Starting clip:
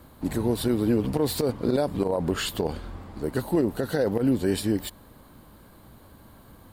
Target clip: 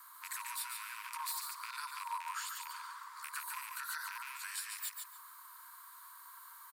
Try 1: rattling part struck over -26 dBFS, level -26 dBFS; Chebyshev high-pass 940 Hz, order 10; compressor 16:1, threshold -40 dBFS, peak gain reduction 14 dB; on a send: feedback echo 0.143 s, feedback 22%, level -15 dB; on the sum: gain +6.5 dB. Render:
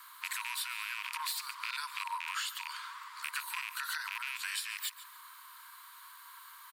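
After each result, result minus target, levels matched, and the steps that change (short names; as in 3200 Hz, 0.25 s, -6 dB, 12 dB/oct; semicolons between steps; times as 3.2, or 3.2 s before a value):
echo-to-direct -10 dB; 4000 Hz band +3.0 dB
change: feedback echo 0.143 s, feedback 22%, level -5 dB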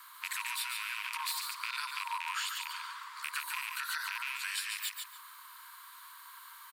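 4000 Hz band +3.0 dB
add after compressor: bell 2900 Hz -13 dB 1.4 oct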